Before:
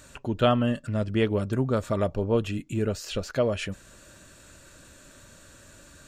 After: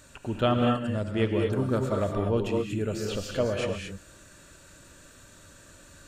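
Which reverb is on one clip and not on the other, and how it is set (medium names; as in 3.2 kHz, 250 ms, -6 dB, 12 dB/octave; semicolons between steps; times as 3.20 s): gated-style reverb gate 260 ms rising, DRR 1.5 dB; trim -3 dB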